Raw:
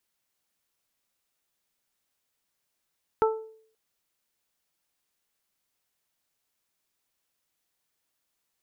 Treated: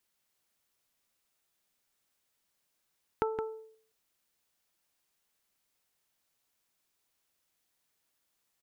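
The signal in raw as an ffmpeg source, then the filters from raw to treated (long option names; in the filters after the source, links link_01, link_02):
-f lavfi -i "aevalsrc='0.126*pow(10,-3*t/0.58)*sin(2*PI*441*t)+0.0891*pow(10,-3*t/0.34)*sin(2*PI*882*t)+0.0631*pow(10,-3*t/0.28)*sin(2*PI*1323*t)':duration=0.53:sample_rate=44100"
-filter_complex "[0:a]acompressor=threshold=-28dB:ratio=6,asplit=2[link_01][link_02];[link_02]aecho=0:1:168:0.398[link_03];[link_01][link_03]amix=inputs=2:normalize=0"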